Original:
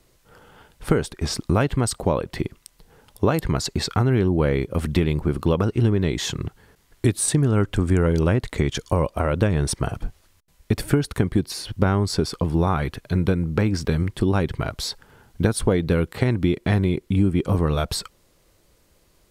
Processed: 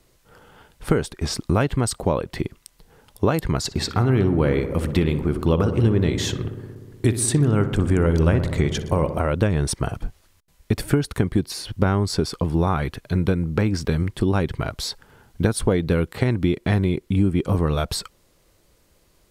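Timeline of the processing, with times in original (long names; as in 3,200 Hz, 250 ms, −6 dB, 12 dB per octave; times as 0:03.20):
0:03.59–0:09.20: feedback echo with a low-pass in the loop 61 ms, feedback 83%, low-pass 2,200 Hz, level −11 dB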